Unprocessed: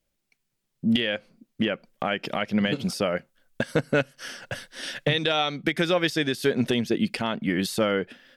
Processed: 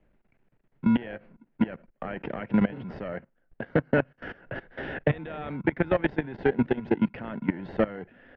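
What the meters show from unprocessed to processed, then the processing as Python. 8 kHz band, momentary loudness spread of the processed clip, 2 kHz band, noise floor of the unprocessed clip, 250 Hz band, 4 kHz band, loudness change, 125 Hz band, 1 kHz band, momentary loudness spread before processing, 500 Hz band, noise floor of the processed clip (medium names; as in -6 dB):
under -40 dB, 14 LU, -6.0 dB, -78 dBFS, -1.0 dB, -20.5 dB, -2.5 dB, -1.0 dB, -4.5 dB, 10 LU, -3.0 dB, -71 dBFS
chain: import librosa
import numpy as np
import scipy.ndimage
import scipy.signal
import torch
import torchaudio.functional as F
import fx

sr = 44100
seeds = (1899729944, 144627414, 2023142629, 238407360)

p1 = fx.sample_hold(x, sr, seeds[0], rate_hz=1200.0, jitter_pct=0)
p2 = x + (p1 * librosa.db_to_amplitude(-4.0))
p3 = fx.level_steps(p2, sr, step_db=19)
p4 = scipy.signal.sosfilt(scipy.signal.butter(4, 2200.0, 'lowpass', fs=sr, output='sos'), p3)
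y = fx.band_squash(p4, sr, depth_pct=40)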